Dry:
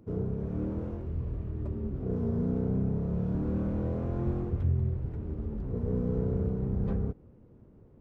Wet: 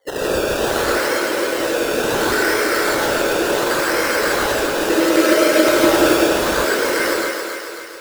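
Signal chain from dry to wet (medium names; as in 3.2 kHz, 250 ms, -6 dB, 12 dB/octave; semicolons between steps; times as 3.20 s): 1.53–2.68 s: high-pass 120 Hz 12 dB/octave; in parallel at 0 dB: compressor with a negative ratio -34 dBFS, ratio -0.5; on the sum: Chebyshev shaper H 7 -19 dB, 8 -9 dB, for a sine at -15.5 dBFS; cascade formant filter e; static phaser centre 790 Hz, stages 6; sine folder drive 16 dB, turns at -24.5 dBFS; 4.80–6.13 s: small resonant body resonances 320/610/1300 Hz, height 16 dB, ringing for 100 ms; LFO high-pass square 9.5 Hz 340–1600 Hz; decimation with a swept rate 17×, swing 60% 0.7 Hz; on a send: thinning echo 271 ms, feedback 57%, high-pass 340 Hz, level -5 dB; on the sum: gated-style reverb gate 190 ms rising, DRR -4.5 dB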